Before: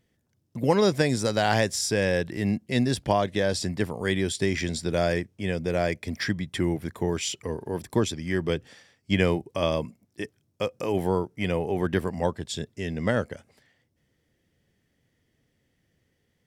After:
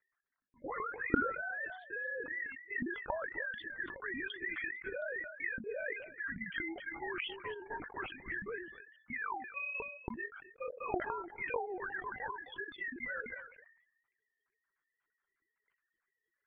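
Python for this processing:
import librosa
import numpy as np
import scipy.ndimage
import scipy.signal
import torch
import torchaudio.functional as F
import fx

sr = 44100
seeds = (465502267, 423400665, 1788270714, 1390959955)

p1 = fx.sine_speech(x, sr)
p2 = fx.dereverb_blind(p1, sr, rt60_s=0.94)
p3 = fx.bandpass_q(p2, sr, hz=1600.0, q=2.3)
p4 = fx.level_steps(p3, sr, step_db=24)
p5 = fx.spec_gate(p4, sr, threshold_db=-15, keep='strong')
p6 = p5 + fx.echo_single(p5, sr, ms=262, db=-16.5, dry=0)
p7 = fx.lpc_vocoder(p6, sr, seeds[0], excitation='whisper', order=16)
p8 = fx.sustainer(p7, sr, db_per_s=75.0)
y = p8 * librosa.db_to_amplitude(8.5)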